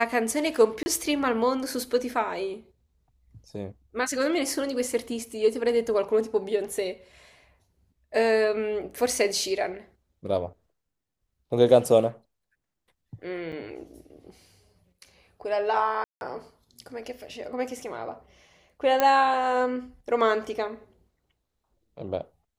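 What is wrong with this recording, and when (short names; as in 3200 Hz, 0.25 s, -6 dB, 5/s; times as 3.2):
0.83–0.86 gap 30 ms
13.52–13.53 gap 7 ms
16.04–16.21 gap 0.171 s
19 pop -8 dBFS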